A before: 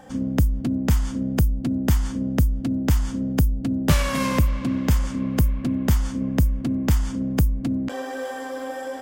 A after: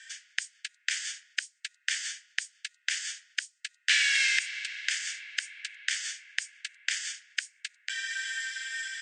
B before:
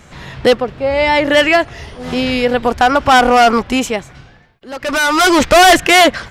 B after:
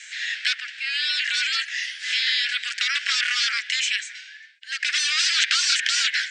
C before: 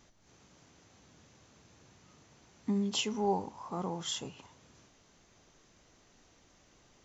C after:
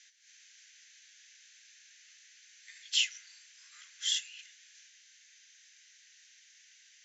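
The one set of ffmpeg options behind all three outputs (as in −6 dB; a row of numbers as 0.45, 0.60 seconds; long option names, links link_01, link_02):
-filter_complex "[0:a]asuperpass=centerf=3900:order=20:qfactor=0.55,acrossover=split=4200[link_01][link_02];[link_02]acompressor=threshold=-39dB:ratio=4:attack=1:release=60[link_03];[link_01][link_03]amix=inputs=2:normalize=0,afftfilt=real='re*lt(hypot(re,im),0.2)':imag='im*lt(hypot(re,im),0.2)':win_size=1024:overlap=0.75,volume=8dB"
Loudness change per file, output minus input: −7.5, −10.0, +3.0 LU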